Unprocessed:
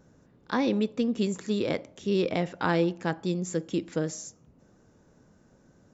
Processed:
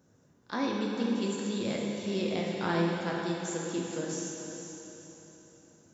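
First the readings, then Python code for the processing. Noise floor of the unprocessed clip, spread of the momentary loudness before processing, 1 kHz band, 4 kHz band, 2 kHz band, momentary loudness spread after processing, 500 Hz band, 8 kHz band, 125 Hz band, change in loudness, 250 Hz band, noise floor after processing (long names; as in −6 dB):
−61 dBFS, 6 LU, −2.5 dB, −0.5 dB, −2.5 dB, 14 LU, −4.0 dB, can't be measured, −4.0 dB, −3.5 dB, −3.0 dB, −65 dBFS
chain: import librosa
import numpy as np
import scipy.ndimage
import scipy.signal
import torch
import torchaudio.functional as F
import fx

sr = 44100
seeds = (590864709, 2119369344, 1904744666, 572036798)

y = scipy.signal.sosfilt(scipy.signal.butter(2, 70.0, 'highpass', fs=sr, output='sos'), x)
y = fx.high_shelf(y, sr, hz=4700.0, db=8.0)
y = fx.echo_diffused(y, sr, ms=452, feedback_pct=41, wet_db=-8.0)
y = fx.rev_plate(y, sr, seeds[0], rt60_s=2.3, hf_ratio=1.0, predelay_ms=0, drr_db=-1.5)
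y = y * librosa.db_to_amplitude(-8.0)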